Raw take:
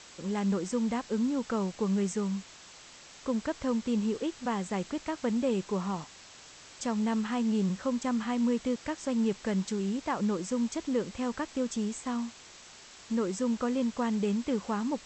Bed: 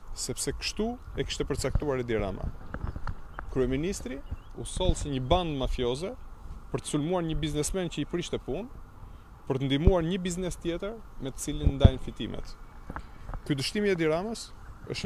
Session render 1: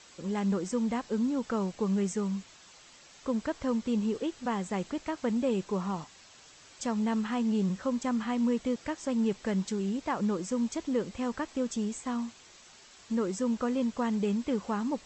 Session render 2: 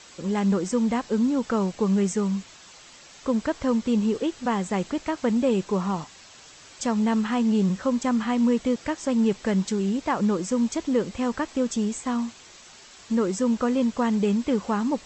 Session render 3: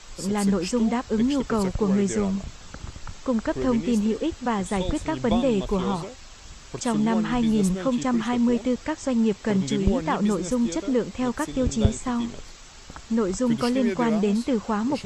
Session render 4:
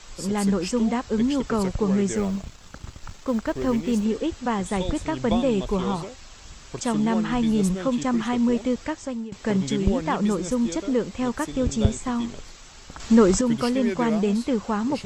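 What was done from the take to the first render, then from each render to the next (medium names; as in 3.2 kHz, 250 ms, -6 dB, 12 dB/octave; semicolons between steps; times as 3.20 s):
noise reduction 6 dB, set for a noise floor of -52 dBFS
trim +6.5 dB
add bed -3 dB
2.15–4.05 s: companding laws mixed up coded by A; 8.85–9.32 s: fade out, to -20.5 dB; 13.00–13.41 s: gain +8 dB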